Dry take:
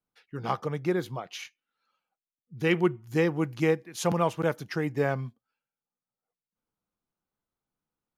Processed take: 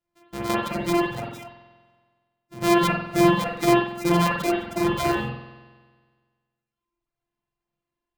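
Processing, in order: sorted samples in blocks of 128 samples; spring tank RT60 1.6 s, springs 46 ms, chirp 50 ms, DRR -6 dB; reverb removal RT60 1.1 s; trim +1 dB

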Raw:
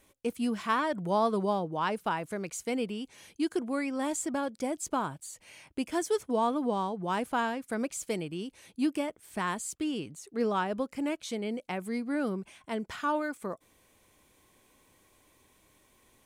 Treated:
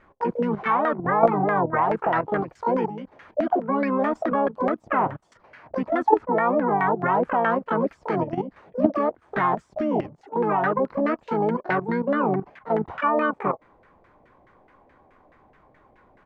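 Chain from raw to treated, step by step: harmony voices -5 st -5 dB, +12 st -3 dB; level held to a coarse grid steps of 11 dB; LFO low-pass saw down 4.7 Hz 610–1800 Hz; trim +9 dB

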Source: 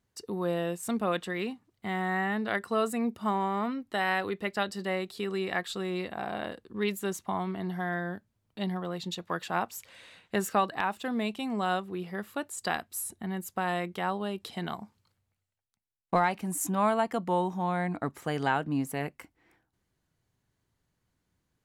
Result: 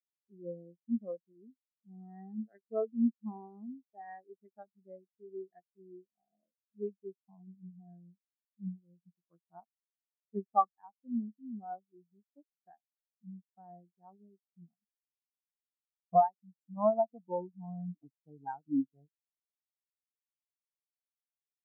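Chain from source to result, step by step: local Wiener filter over 41 samples; 16.21–16.77 s: bass shelf 190 Hz -7 dB; on a send at -21 dB: reverberation RT60 0.45 s, pre-delay 3 ms; on the sum: spectral contrast expander 4:1

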